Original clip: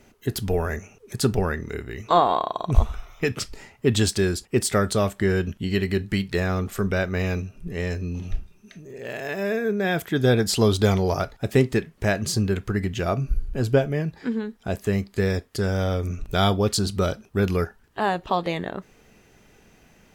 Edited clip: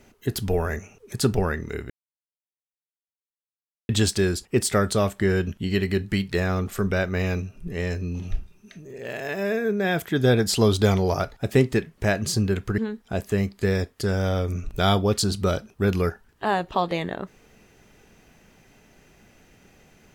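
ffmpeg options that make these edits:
-filter_complex "[0:a]asplit=4[s0][s1][s2][s3];[s0]atrim=end=1.9,asetpts=PTS-STARTPTS,afade=t=out:st=1.896:d=0.004:c=hsin[s4];[s1]atrim=start=1.9:end=3.89,asetpts=PTS-STARTPTS,volume=0[s5];[s2]atrim=start=3.89:end=12.782,asetpts=PTS-STARTPTS,afade=t=in:d=0.004:c=hsin[s6];[s3]atrim=start=14.328[s7];[s4][s5][s6]concat=n=3:v=0:a=1[s8];[s8][s7]acrossfade=d=0.004:c1=hsin:c2=hsin"

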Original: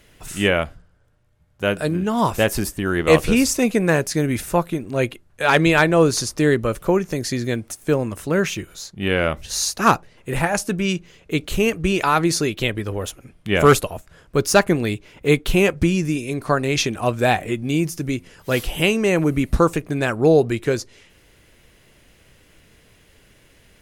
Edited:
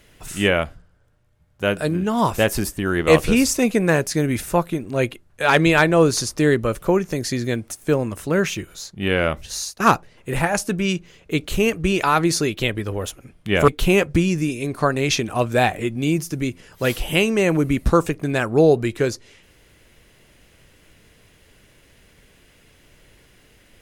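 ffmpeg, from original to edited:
-filter_complex "[0:a]asplit=3[s0][s1][s2];[s0]atrim=end=9.8,asetpts=PTS-STARTPTS,afade=t=out:st=9.37:d=0.43:silence=0.16788[s3];[s1]atrim=start=9.8:end=13.682,asetpts=PTS-STARTPTS,afade=t=in:d=0.004:c=hsin:silence=0.16788[s4];[s2]atrim=start=15.348[s5];[s3][s4]concat=n=2:v=0:a=1[s6];[s6][s5]acrossfade=d=0.004:c1=hsin:c2=hsin"

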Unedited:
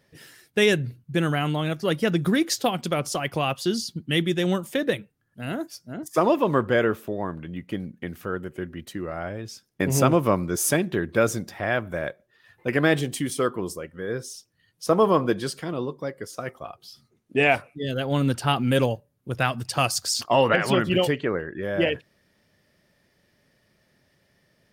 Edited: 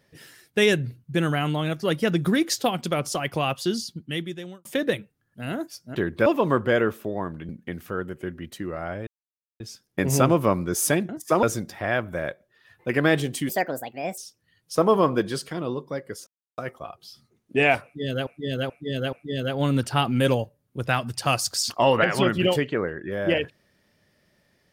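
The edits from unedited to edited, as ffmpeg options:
-filter_complex "[0:a]asplit=14[s0][s1][s2][s3][s4][s5][s6][s7][s8][s9][s10][s11][s12][s13];[s0]atrim=end=4.65,asetpts=PTS-STARTPTS,afade=t=out:st=3.62:d=1.03[s14];[s1]atrim=start=4.65:end=5.952,asetpts=PTS-STARTPTS,afade=t=in:d=0.004:c=hsin[s15];[s2]atrim=start=10.908:end=11.222[s16];[s3]atrim=start=6.288:end=7.522[s17];[s4]atrim=start=7.838:end=9.42,asetpts=PTS-STARTPTS,afade=t=out:st=1.578:d=0.004:c=hsin,apad=pad_dur=0.53[s18];[s5]atrim=start=9.42:end=10.912,asetpts=PTS-STARTPTS,afade=t=in:d=0.004:c=hsin[s19];[s6]atrim=start=5.948:end=6.292[s20];[s7]atrim=start=11.218:end=13.284[s21];[s8]atrim=start=13.28:end=14.29,asetpts=PTS-STARTPTS,asetrate=64827,aresample=44100[s22];[s9]atrim=start=14.286:end=16.38,asetpts=PTS-STARTPTS,afade=t=out:st=2.09:d=0.004:c=hsin,apad=pad_dur=0.31[s23];[s10]atrim=start=16.38:end=18.072,asetpts=PTS-STARTPTS,afade=t=in:d=0.004:c=hsin[s24];[s11]atrim=start=17.638:end=18.072[s25];[s12]atrim=start=17.638:end=18.072[s26];[s13]atrim=start=17.638[s27];[s14][s15]concat=n=2:v=0:a=1[s28];[s28][s16]acrossfade=d=0.004:c1=hsin:c2=hsin[s29];[s29][s17]acrossfade=d=0.004:c1=hsin:c2=hsin[s30];[s18][s19]concat=n=2:v=0:a=1[s31];[s30][s31]acrossfade=d=0.004:c1=hsin:c2=hsin[s32];[s32][s20]acrossfade=d=0.004:c1=hsin:c2=hsin[s33];[s33][s21]acrossfade=d=0.004:c1=hsin:c2=hsin[s34];[s34][s22]acrossfade=d=0.004:c1=hsin:c2=hsin[s35];[s23][s24]concat=n=2:v=0:a=1[s36];[s35][s36]acrossfade=d=0.004:c1=hsin:c2=hsin[s37];[s37][s25]acrossfade=d=0.004:c1=hsin:c2=hsin[s38];[s38][s26]acrossfade=d=0.004:c1=hsin:c2=hsin[s39];[s39][s27]acrossfade=d=0.004:c1=hsin:c2=hsin"

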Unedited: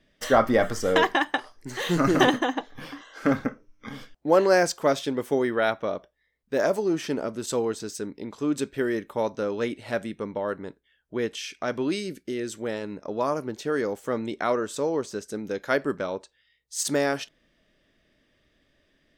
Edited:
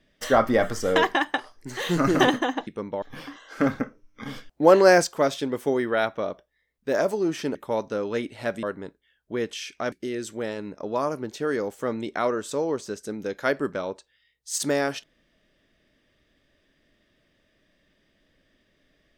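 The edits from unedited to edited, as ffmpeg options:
-filter_complex "[0:a]asplit=8[s0][s1][s2][s3][s4][s5][s6][s7];[s0]atrim=end=2.672[s8];[s1]atrim=start=10.098:end=10.452[s9];[s2]atrim=start=2.668:end=3.912[s10];[s3]atrim=start=3.908:end=4.692,asetpts=PTS-STARTPTS,volume=1.58[s11];[s4]atrim=start=4.688:end=7.202[s12];[s5]atrim=start=9.018:end=10.102[s13];[s6]atrim=start=10.448:end=11.742[s14];[s7]atrim=start=12.168[s15];[s8][s9]acrossfade=d=0.004:c1=hsin:c2=hsin[s16];[s16][s10]acrossfade=d=0.004:c1=hsin:c2=hsin[s17];[s17][s11]acrossfade=d=0.004:c1=hsin:c2=hsin[s18];[s18][s12]acrossfade=d=0.004:c1=hsin:c2=hsin[s19];[s19][s13]acrossfade=d=0.004:c1=hsin:c2=hsin[s20];[s20][s14]acrossfade=d=0.004:c1=hsin:c2=hsin[s21];[s21][s15]acrossfade=d=0.004:c1=hsin:c2=hsin"

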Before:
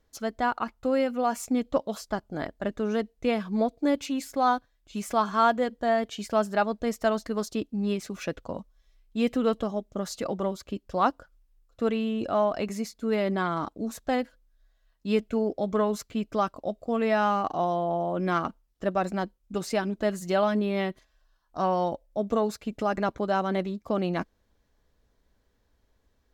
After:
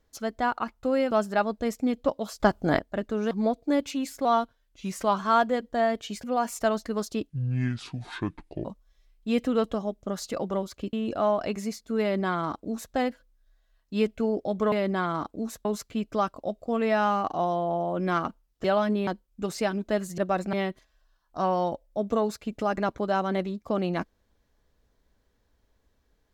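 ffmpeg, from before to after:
-filter_complex "[0:a]asplit=19[s0][s1][s2][s3][s4][s5][s6][s7][s8][s9][s10][s11][s12][s13][s14][s15][s16][s17][s18];[s0]atrim=end=1.112[s19];[s1]atrim=start=6.318:end=7.002[s20];[s2]atrim=start=1.468:end=2.082[s21];[s3]atrim=start=2.078:end=2.472,asetpts=PTS-STARTPTS,volume=2.82[s22];[s4]atrim=start=2.468:end=2.992[s23];[s5]atrim=start=3.458:end=4.404[s24];[s6]atrim=start=4.4:end=5.27,asetpts=PTS-STARTPTS,asetrate=41013,aresample=44100[s25];[s7]atrim=start=5.266:end=6.322[s26];[s8]atrim=start=1.108:end=1.472[s27];[s9]atrim=start=6.998:end=7.704[s28];[s10]atrim=start=7.7:end=8.54,asetpts=PTS-STARTPTS,asetrate=27342,aresample=44100,atrim=end_sample=59748,asetpts=PTS-STARTPTS[s29];[s11]atrim=start=8.536:end=10.822[s30];[s12]atrim=start=12.058:end=15.852[s31];[s13]atrim=start=13.138:end=14.072[s32];[s14]atrim=start=15.848:end=18.842[s33];[s15]atrim=start=20.298:end=20.732[s34];[s16]atrim=start=19.188:end=20.302[s35];[s17]atrim=start=18.838:end=19.192[s36];[s18]atrim=start=20.728[s37];[s19][s20]acrossfade=d=0.004:c1=hsin:c2=hsin[s38];[s38][s21]acrossfade=d=0.004:c1=hsin:c2=hsin[s39];[s39][s22]acrossfade=d=0.004:c1=hsin:c2=hsin[s40];[s40][s23]acrossfade=d=0.004:c1=hsin:c2=hsin[s41];[s41][s24]acrossfade=d=0.004:c1=hsin:c2=hsin[s42];[s42][s25]acrossfade=d=0.004:c1=hsin:c2=hsin[s43];[s43][s26]acrossfade=d=0.004:c1=hsin:c2=hsin[s44];[s44][s27]acrossfade=d=0.004:c1=hsin:c2=hsin[s45];[s45][s28]acrossfade=d=0.004:c1=hsin:c2=hsin[s46];[s46][s29]acrossfade=d=0.004:c1=hsin:c2=hsin[s47];[s47][s30]acrossfade=d=0.004:c1=hsin:c2=hsin[s48];[s48][s31]acrossfade=d=0.004:c1=hsin:c2=hsin[s49];[s49][s32]acrossfade=d=0.004:c1=hsin:c2=hsin[s50];[s50][s33]acrossfade=d=0.004:c1=hsin:c2=hsin[s51];[s51][s34]acrossfade=d=0.004:c1=hsin:c2=hsin[s52];[s52][s35]acrossfade=d=0.004:c1=hsin:c2=hsin[s53];[s53][s36]acrossfade=d=0.004:c1=hsin:c2=hsin[s54];[s54][s37]acrossfade=d=0.004:c1=hsin:c2=hsin"

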